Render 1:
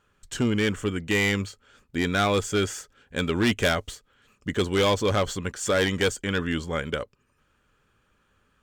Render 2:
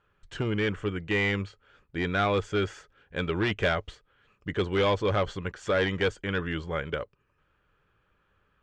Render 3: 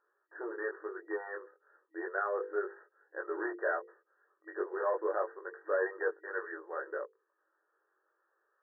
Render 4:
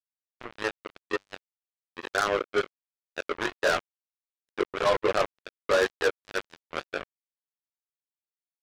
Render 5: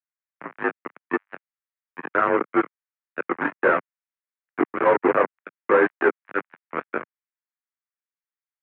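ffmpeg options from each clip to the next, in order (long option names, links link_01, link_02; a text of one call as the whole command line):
ffmpeg -i in.wav -af "lowpass=3000,equalizer=frequency=240:width_type=o:width=0.23:gain=-13,volume=-2dB" out.wav
ffmpeg -i in.wav -af "flanger=delay=19:depth=2.6:speed=0.33,bandreject=frequency=50:width_type=h:width=6,bandreject=frequency=100:width_type=h:width=6,bandreject=frequency=150:width_type=h:width=6,bandreject=frequency=200:width_type=h:width=6,bandreject=frequency=250:width_type=h:width=6,bandreject=frequency=300:width_type=h:width=6,bandreject=frequency=350:width_type=h:width=6,bandreject=frequency=400:width_type=h:width=6,bandreject=frequency=450:width_type=h:width=6,bandreject=frequency=500:width_type=h:width=6,afftfilt=real='re*between(b*sr/4096,320,1900)':imag='im*between(b*sr/4096,320,1900)':win_size=4096:overlap=0.75,volume=-2.5dB" out.wav
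ffmpeg -i in.wav -af "acrusher=bits=4:mix=0:aa=0.5,volume=7.5dB" out.wav
ffmpeg -i in.wav -filter_complex "[0:a]acrossover=split=1100[link_01][link_02];[link_01]aeval=exprs='sgn(val(0))*max(abs(val(0))-0.00376,0)':channel_layout=same[link_03];[link_03][link_02]amix=inputs=2:normalize=0,aeval=exprs='0.282*(cos(1*acos(clip(val(0)/0.282,-1,1)))-cos(1*PI/2))+0.0891*(cos(2*acos(clip(val(0)/0.282,-1,1)))-cos(2*PI/2))':channel_layout=same,highpass=frequency=240:width_type=q:width=0.5412,highpass=frequency=240:width_type=q:width=1.307,lowpass=frequency=2200:width_type=q:width=0.5176,lowpass=frequency=2200:width_type=q:width=0.7071,lowpass=frequency=2200:width_type=q:width=1.932,afreqshift=-68,volume=6dB" out.wav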